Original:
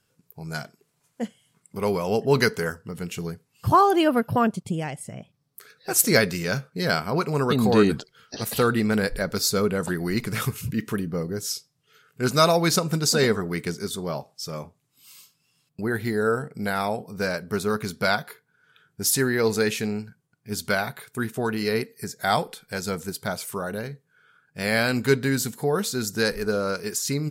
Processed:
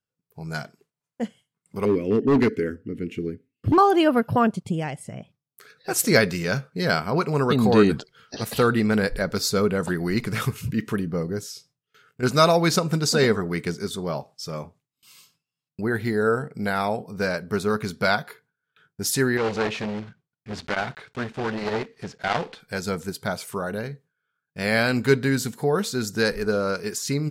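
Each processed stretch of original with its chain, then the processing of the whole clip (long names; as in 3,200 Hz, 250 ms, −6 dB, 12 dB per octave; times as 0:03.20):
0:01.85–0:03.78: drawn EQ curve 110 Hz 0 dB, 160 Hz −6 dB, 280 Hz +13 dB, 430 Hz +2 dB, 870 Hz −25 dB, 2,100 Hz −1 dB, 4,900 Hz −15 dB + gain into a clipping stage and back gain 16 dB
0:11.43–0:12.23: downward compressor 4 to 1, threshold −33 dBFS + double-tracking delay 17 ms −9 dB
0:19.37–0:22.60: one scale factor per block 3 bits + low-pass filter 4,200 Hz + saturating transformer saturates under 1,500 Hz
whole clip: noise gate with hold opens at −46 dBFS; high-shelf EQ 7,500 Hz −9 dB; level +1.5 dB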